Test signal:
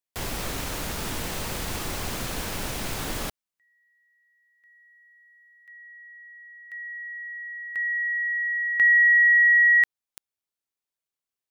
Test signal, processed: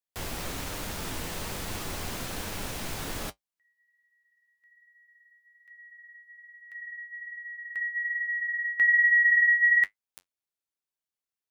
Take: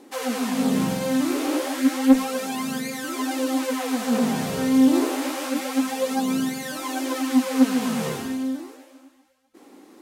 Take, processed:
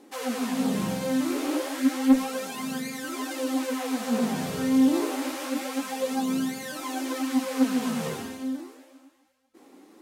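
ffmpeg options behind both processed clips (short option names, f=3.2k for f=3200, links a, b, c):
-af "flanger=delay=9.5:depth=2.8:regen=-51:speed=1.2:shape=sinusoidal"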